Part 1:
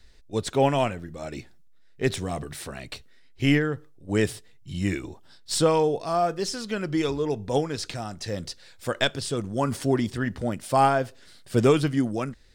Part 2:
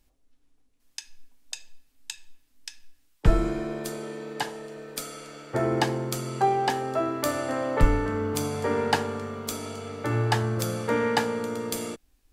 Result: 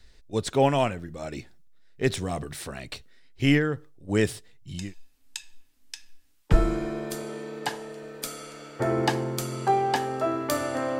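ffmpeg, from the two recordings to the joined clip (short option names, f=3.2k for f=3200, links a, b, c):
-filter_complex "[0:a]apad=whole_dur=10.99,atrim=end=10.99,atrim=end=4.94,asetpts=PTS-STARTPTS[a];[1:a]atrim=start=1.4:end=7.73,asetpts=PTS-STARTPTS[b];[a][b]acrossfade=d=0.28:c1=tri:c2=tri"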